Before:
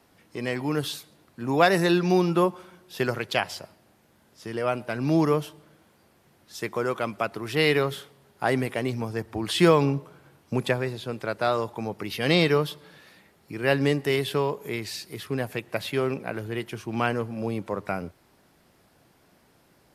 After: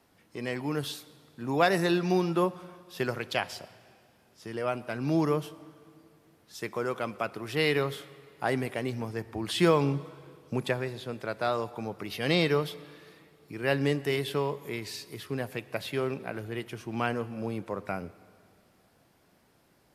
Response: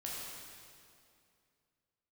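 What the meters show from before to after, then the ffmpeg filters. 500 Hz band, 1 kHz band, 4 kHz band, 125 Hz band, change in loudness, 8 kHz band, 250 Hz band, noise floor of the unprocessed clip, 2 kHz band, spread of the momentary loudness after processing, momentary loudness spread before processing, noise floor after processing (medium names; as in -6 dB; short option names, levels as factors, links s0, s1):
-4.5 dB, -4.5 dB, -4.5 dB, -4.5 dB, -4.5 dB, -4.5 dB, -4.5 dB, -62 dBFS, -4.5 dB, 15 LU, 13 LU, -65 dBFS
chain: -filter_complex "[0:a]asplit=2[s0][s1];[1:a]atrim=start_sample=2205,adelay=21[s2];[s1][s2]afir=irnorm=-1:irlink=0,volume=0.126[s3];[s0][s3]amix=inputs=2:normalize=0,volume=0.596"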